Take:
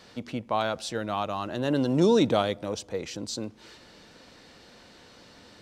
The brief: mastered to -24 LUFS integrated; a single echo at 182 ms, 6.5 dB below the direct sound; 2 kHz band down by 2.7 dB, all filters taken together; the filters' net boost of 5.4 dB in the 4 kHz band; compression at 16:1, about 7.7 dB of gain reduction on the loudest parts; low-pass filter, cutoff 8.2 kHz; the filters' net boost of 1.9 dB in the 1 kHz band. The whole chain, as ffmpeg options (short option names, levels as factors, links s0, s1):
-af "lowpass=8200,equalizer=f=1000:t=o:g=4,equalizer=f=2000:t=o:g=-8,equalizer=f=4000:t=o:g=8.5,acompressor=threshold=0.0708:ratio=16,aecho=1:1:182:0.473,volume=1.88"